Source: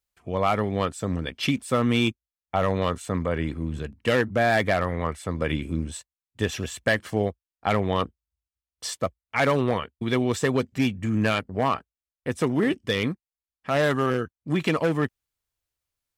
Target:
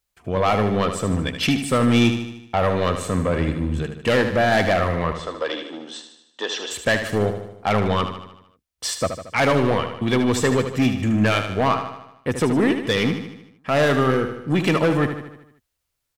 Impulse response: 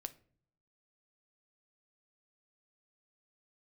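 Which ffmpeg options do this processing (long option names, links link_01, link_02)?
-filter_complex "[0:a]asoftclip=type=tanh:threshold=-19dB,asettb=1/sr,asplit=3[link_01][link_02][link_03];[link_01]atrim=end=5.124[link_04];[link_02]atrim=start=5.12:end=6.71,asetpts=PTS-STARTPTS,afade=type=in:duration=0.004:curve=qsin,afade=type=out:start_time=1.586:duration=0.004:curve=qsin,highpass=frequency=370:width=0.5412,highpass=frequency=370:width=1.3066,equalizer=frequency=400:width_type=q:width=4:gain=-4,equalizer=frequency=2300:width_type=q:width=4:gain=-9,equalizer=frequency=3400:width_type=q:width=4:gain=5,lowpass=frequency=5900:width=0.5412,lowpass=frequency=5900:width=1.3066[link_05];[link_03]atrim=start=6.706[link_06];[link_04][link_05]acrossfade=duration=0.004:curve1=hsin:curve2=qsin[link_07];[link_07][link_06]acrossfade=duration=0.004:curve1=qsin:curve2=hsin,aecho=1:1:76|152|228|304|380|456|532:0.376|0.207|0.114|0.0625|0.0344|0.0189|0.0104,volume=6.5dB"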